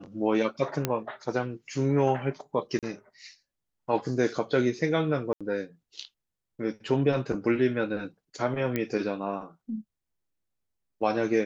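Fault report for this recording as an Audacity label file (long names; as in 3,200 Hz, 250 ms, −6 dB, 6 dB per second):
0.850000	0.850000	click −10 dBFS
2.790000	2.830000	drop-out 37 ms
5.330000	5.410000	drop-out 76 ms
8.760000	8.760000	click −15 dBFS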